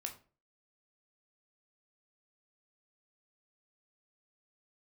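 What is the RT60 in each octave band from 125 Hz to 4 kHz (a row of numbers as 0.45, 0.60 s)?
0.45, 0.40, 0.40, 0.35, 0.30, 0.25 s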